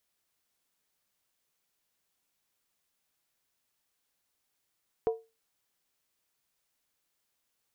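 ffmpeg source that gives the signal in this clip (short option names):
-f lavfi -i "aevalsrc='0.0891*pow(10,-3*t/0.26)*sin(2*PI*451*t)+0.0282*pow(10,-3*t/0.206)*sin(2*PI*718.9*t)+0.00891*pow(10,-3*t/0.178)*sin(2*PI*963.3*t)+0.00282*pow(10,-3*t/0.172)*sin(2*PI*1035.5*t)+0.000891*pow(10,-3*t/0.16)*sin(2*PI*1196.5*t)':d=0.63:s=44100"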